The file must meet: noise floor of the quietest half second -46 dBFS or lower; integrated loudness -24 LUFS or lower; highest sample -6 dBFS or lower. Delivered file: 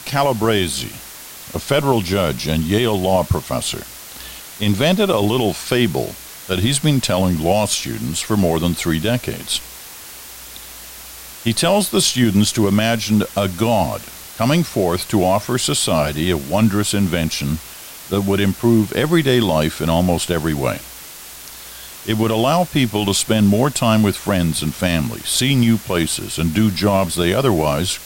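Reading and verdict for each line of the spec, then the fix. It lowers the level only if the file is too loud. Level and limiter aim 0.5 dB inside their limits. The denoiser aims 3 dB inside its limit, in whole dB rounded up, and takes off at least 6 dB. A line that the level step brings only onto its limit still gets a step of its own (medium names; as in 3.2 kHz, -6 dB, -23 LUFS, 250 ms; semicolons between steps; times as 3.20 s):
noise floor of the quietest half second -36 dBFS: fail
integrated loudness -17.5 LUFS: fail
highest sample -3.0 dBFS: fail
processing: noise reduction 6 dB, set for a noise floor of -36 dBFS; trim -7 dB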